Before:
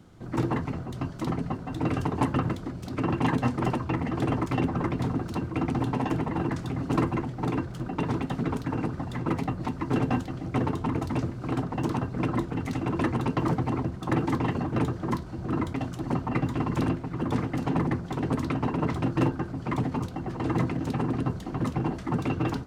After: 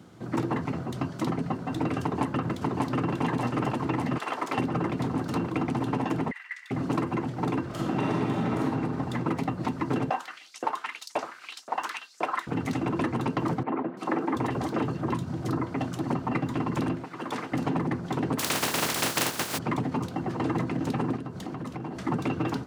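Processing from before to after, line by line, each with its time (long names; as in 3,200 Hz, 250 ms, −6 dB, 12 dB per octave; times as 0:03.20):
0:02.02–0:03.13: delay throw 590 ms, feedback 75%, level −1.5 dB
0:04.17–0:04.57: high-pass filter 1,200 Hz → 390 Hz
0:06.31–0:06.71: four-pole ladder high-pass 1,900 Hz, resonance 85%
0:07.67–0:08.62: thrown reverb, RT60 1.6 s, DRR −5.5 dB
0:10.10–0:12.47: auto-filter high-pass saw up 1.9 Hz 570–7,400 Hz
0:13.63–0:15.80: three-band delay without the direct sound mids, highs, lows 340/720 ms, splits 210/2,600 Hz
0:17.04–0:17.52: high-pass filter 990 Hz 6 dB per octave
0:18.38–0:19.57: compressing power law on the bin magnitudes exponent 0.26
0:21.16–0:21.99: downward compressor 10 to 1, threshold −34 dBFS
whole clip: downward compressor, threshold −27 dBFS; high-pass filter 130 Hz 12 dB per octave; level +4 dB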